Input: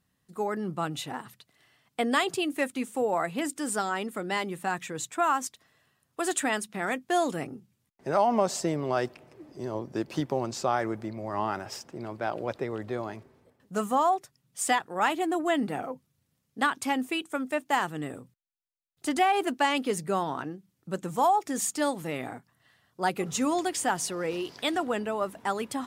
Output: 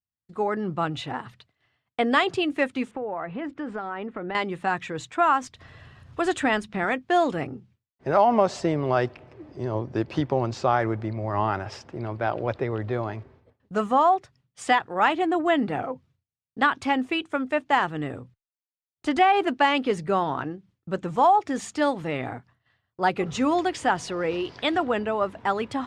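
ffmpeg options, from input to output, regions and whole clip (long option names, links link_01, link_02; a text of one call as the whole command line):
ffmpeg -i in.wav -filter_complex "[0:a]asettb=1/sr,asplit=3[link_01][link_02][link_03];[link_01]atrim=end=2.914[link_04];[link_02]atrim=start=2.91:end=4.35,asetpts=PTS-STARTPTS,afade=type=in:duration=0.004:curve=qsin,afade=type=out:start_time=1.436:duration=0.004:curve=qsin,lowpass=2000,acompressor=threshold=-32dB:ratio=5:attack=3.2:release=140:knee=1:detection=peak[link_05];[link_03]atrim=start=4.346[link_06];[link_04][link_05]acrossfade=duration=0.004:curve1=hsin:curve2=qsin[link_07];[link_07][link_06]acrossfade=duration=0.004:curve1=qsin:curve2=hsin,asettb=1/sr,asplit=3[link_08][link_09][link_10];[link_08]atrim=end=5.434[link_11];[link_09]atrim=start=5.43:end=6.84,asetpts=PTS-STARTPTS,afade=type=in:duration=0.004:curve=qsin,afade=type=out:start_time=1.406:duration=0.004:curve=qsin,lowshelf=frequency=130:gain=11.5,acompressor=mode=upward:threshold=-41dB:ratio=2.5:attack=3.2:release=140:knee=2.83:detection=peak[link_12];[link_10]atrim=start=6.836[link_13];[link_11][link_12]acrossfade=duration=0.004:curve1=hsin:curve2=qsin[link_14];[link_14][link_13]acrossfade=duration=0.004:curve1=qsin:curve2=hsin,lowpass=3600,agate=range=-33dB:threshold=-56dB:ratio=3:detection=peak,lowshelf=frequency=130:width_type=q:width=1.5:gain=6.5,volume=5dB" out.wav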